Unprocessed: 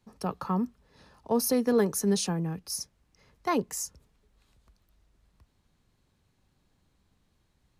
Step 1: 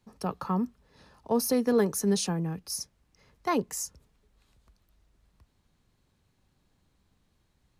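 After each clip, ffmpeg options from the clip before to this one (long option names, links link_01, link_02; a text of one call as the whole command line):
ffmpeg -i in.wav -af "deesser=0.4" out.wav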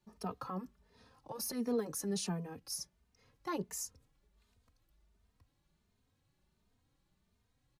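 ffmpeg -i in.wav -filter_complex "[0:a]alimiter=limit=-22.5dB:level=0:latency=1:release=21,asplit=2[link_01][link_02];[link_02]adelay=3,afreqshift=1.4[link_03];[link_01][link_03]amix=inputs=2:normalize=1,volume=-3.5dB" out.wav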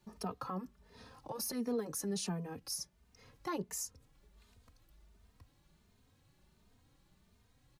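ffmpeg -i in.wav -af "acompressor=threshold=-58dB:ratio=1.5,volume=8dB" out.wav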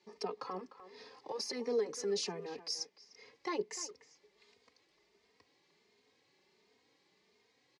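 ffmpeg -i in.wav -filter_complex "[0:a]highpass=370,equalizer=frequency=420:width_type=q:width=4:gain=10,equalizer=frequency=620:width_type=q:width=4:gain=-4,equalizer=frequency=1400:width_type=q:width=4:gain=-8,equalizer=frequency=2100:width_type=q:width=4:gain=8,equalizer=frequency=4800:width_type=q:width=4:gain=6,lowpass=frequency=6600:width=0.5412,lowpass=frequency=6600:width=1.3066,asplit=2[link_01][link_02];[link_02]adelay=300,highpass=300,lowpass=3400,asoftclip=type=hard:threshold=-35dB,volume=-13dB[link_03];[link_01][link_03]amix=inputs=2:normalize=0,volume=1.5dB" out.wav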